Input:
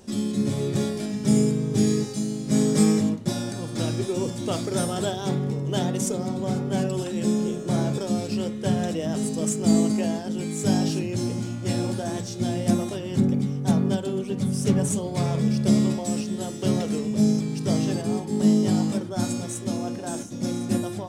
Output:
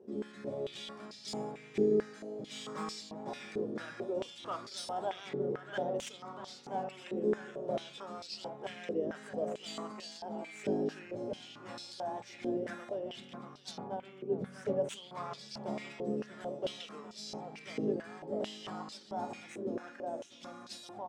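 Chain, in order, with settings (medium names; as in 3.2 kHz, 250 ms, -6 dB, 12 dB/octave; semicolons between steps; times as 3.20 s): tracing distortion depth 0.047 ms; 13.87–14.33 s: treble shelf 2.7 kHz -10.5 dB; echo from a far wall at 110 m, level -7 dB; step-sequenced band-pass 4.5 Hz 420–4400 Hz; trim +1 dB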